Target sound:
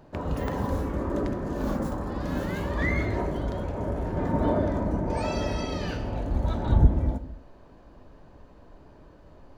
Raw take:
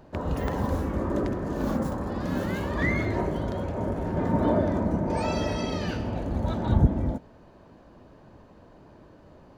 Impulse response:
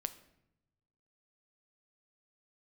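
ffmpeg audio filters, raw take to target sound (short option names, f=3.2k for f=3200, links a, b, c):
-filter_complex "[0:a]asubboost=boost=3:cutoff=71[a];[1:a]atrim=start_sample=2205,afade=t=out:st=0.33:d=0.01,atrim=end_sample=14994[b];[a][b]afir=irnorm=-1:irlink=0"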